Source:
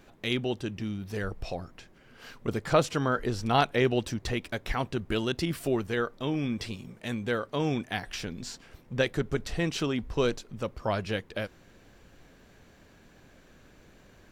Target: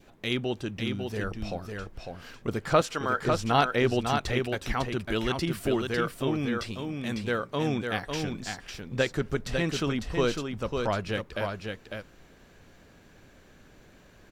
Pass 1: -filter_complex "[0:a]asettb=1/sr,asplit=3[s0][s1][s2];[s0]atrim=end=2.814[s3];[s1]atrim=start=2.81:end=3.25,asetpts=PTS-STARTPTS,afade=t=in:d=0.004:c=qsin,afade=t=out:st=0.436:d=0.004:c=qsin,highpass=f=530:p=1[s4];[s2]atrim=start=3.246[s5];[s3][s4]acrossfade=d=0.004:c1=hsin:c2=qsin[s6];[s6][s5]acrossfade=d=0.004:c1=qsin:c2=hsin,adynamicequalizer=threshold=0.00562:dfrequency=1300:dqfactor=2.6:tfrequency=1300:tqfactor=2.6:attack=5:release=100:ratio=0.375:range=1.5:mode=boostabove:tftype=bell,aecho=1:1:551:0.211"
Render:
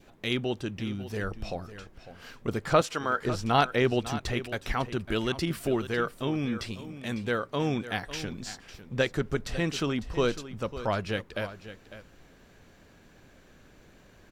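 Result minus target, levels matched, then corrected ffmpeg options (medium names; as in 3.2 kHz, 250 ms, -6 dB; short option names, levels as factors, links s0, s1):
echo-to-direct -8.5 dB
-filter_complex "[0:a]asettb=1/sr,asplit=3[s0][s1][s2];[s0]atrim=end=2.814[s3];[s1]atrim=start=2.81:end=3.25,asetpts=PTS-STARTPTS,afade=t=in:d=0.004:c=qsin,afade=t=out:st=0.436:d=0.004:c=qsin,highpass=f=530:p=1[s4];[s2]atrim=start=3.246[s5];[s3][s4]acrossfade=d=0.004:c1=hsin:c2=qsin[s6];[s6][s5]acrossfade=d=0.004:c1=qsin:c2=hsin,adynamicequalizer=threshold=0.00562:dfrequency=1300:dqfactor=2.6:tfrequency=1300:tqfactor=2.6:attack=5:release=100:ratio=0.375:range=1.5:mode=boostabove:tftype=bell,aecho=1:1:551:0.562"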